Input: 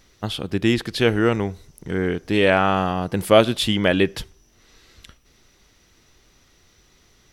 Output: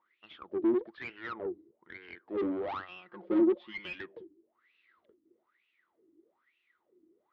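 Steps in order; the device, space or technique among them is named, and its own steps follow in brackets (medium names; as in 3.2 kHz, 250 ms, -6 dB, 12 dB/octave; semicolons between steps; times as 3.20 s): wah-wah guitar rig (wah-wah 1.1 Hz 300–2700 Hz, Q 14; valve stage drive 37 dB, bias 0.5; cabinet simulation 79–3500 Hz, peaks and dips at 120 Hz -5 dB, 220 Hz +5 dB, 340 Hz +10 dB, 760 Hz -4 dB, 1.6 kHz -4 dB, 2.6 kHz -6 dB); 2.88–3.95 s: comb 5.6 ms, depth 68%; trim +5 dB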